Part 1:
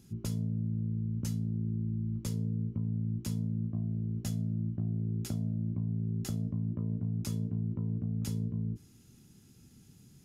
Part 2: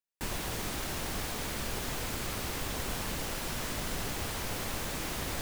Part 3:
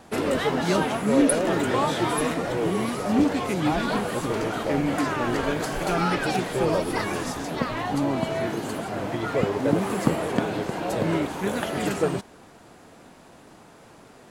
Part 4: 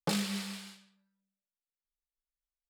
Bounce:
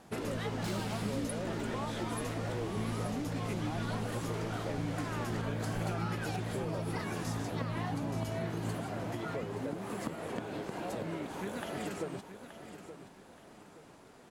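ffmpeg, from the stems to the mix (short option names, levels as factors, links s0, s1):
-filter_complex "[0:a]volume=0.422,asplit=2[s0][s1];[s1]volume=0.531[s2];[1:a]lowpass=6800,volume=0.224[s3];[2:a]acompressor=threshold=0.0447:ratio=6,volume=0.398,asplit=2[s4][s5];[s5]volume=0.266[s6];[3:a]asoftclip=type=tanh:threshold=0.0158,adelay=550,volume=0.668[s7];[s2][s6]amix=inputs=2:normalize=0,aecho=0:1:875|1750|2625|3500|4375:1|0.34|0.116|0.0393|0.0134[s8];[s0][s3][s4][s7][s8]amix=inputs=5:normalize=0"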